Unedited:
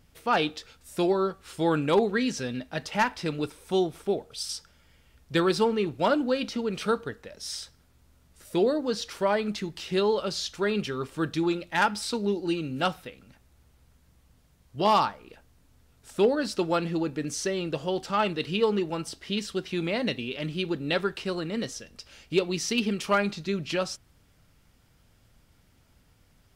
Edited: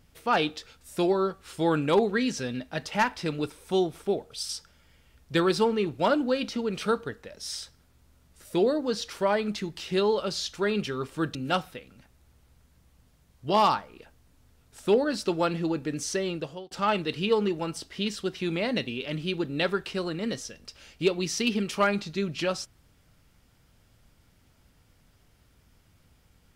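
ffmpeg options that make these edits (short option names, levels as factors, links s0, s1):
-filter_complex "[0:a]asplit=3[s0][s1][s2];[s0]atrim=end=11.352[s3];[s1]atrim=start=12.658:end=18.02,asetpts=PTS-STARTPTS,afade=t=out:st=4.942:d=0.42[s4];[s2]atrim=start=18.02,asetpts=PTS-STARTPTS,afade=t=in:d=0.004:c=hsin[s5];[s4][s5]concat=n=2:v=0:a=1[s6];[s3][s6]acrossfade=d=0.004:c1=hsin:c2=hsin"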